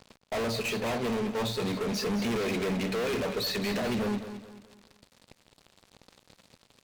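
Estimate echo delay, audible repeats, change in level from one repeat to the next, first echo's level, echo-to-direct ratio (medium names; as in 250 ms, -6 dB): 213 ms, 3, -8.5 dB, -11.0 dB, -10.5 dB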